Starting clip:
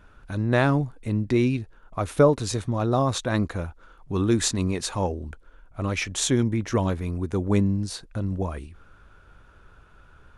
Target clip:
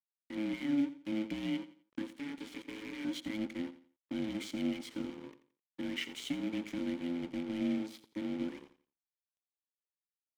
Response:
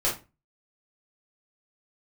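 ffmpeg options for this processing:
-filter_complex "[0:a]highshelf=frequency=9000:gain=12,alimiter=limit=-16.5dB:level=0:latency=1:release=34,acrossover=split=190|3000[link_01][link_02][link_03];[link_02]acompressor=threshold=-29dB:ratio=2.5[link_04];[link_01][link_04][link_03]amix=inputs=3:normalize=0,acrusher=bits=3:mode=log:mix=0:aa=0.000001,aeval=exprs='val(0)*sin(2*PI*430*n/s)':channel_layout=same,asettb=1/sr,asplit=3[link_05][link_06][link_07];[link_05]atrim=end=2.134[link_08];[link_06]atrim=start=2.13:end=3.05,asetpts=PTS-STARTPTS,afade=type=in:duration=0.004:curve=qsin,afade=type=out:start_time=0.916:duration=0.004:curve=qsin,aeval=exprs='0.0355*(abs(mod(val(0)/0.0355+3,4)-2)-1)':channel_layout=same[link_09];[link_07]atrim=start=3.046[link_10];[link_08][link_09]acrossfade=duration=0.004:curve1=hsin:curve2=qsin[link_11];[link_11][link_10]acrossfade=duration=0.004:curve1=qsin:curve2=hsin,asplit=3[link_12][link_13][link_14];[link_12]bandpass=frequency=270:width_type=q:width=8,volume=0dB[link_15];[link_13]bandpass=frequency=2290:width_type=q:width=8,volume=-6dB[link_16];[link_14]bandpass=frequency=3010:width_type=q:width=8,volume=-9dB[link_17];[link_15][link_16][link_17]amix=inputs=3:normalize=0,aeval=exprs='sgn(val(0))*max(abs(val(0))-0.00168,0)':channel_layout=same,aecho=1:1:86|172|258:0.188|0.0546|0.0158,volume=7.5dB"

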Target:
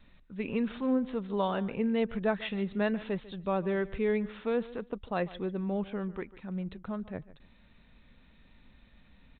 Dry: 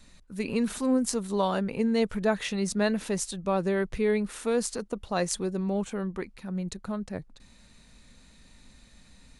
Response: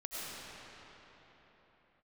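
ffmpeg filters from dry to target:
-filter_complex "[0:a]asplit=2[link_01][link_02];[link_02]aecho=0:1:146|292:0.126|0.0239[link_03];[link_01][link_03]amix=inputs=2:normalize=0,aresample=8000,aresample=44100,volume=-3.5dB"

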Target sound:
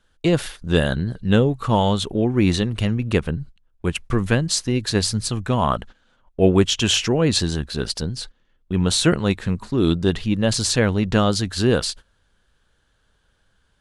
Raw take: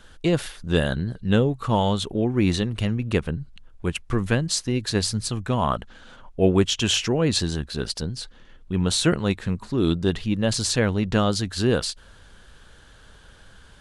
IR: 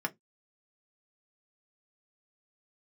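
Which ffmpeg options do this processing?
-af "agate=range=-18dB:threshold=-38dB:ratio=16:detection=peak,volume=3dB"

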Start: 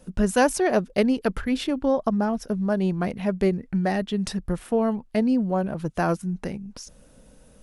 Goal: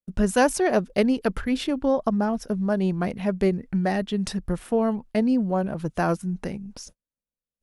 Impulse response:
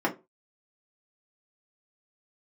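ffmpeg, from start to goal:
-af "agate=range=-47dB:threshold=-43dB:ratio=16:detection=peak"

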